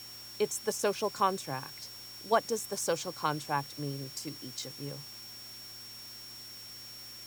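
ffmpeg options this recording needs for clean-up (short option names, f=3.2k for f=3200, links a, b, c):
-af "adeclick=t=4,bandreject=f=114.7:t=h:w=4,bandreject=f=229.4:t=h:w=4,bandreject=f=344.1:t=h:w=4,bandreject=f=5.5k:w=30,afftdn=nr=30:nf=-47"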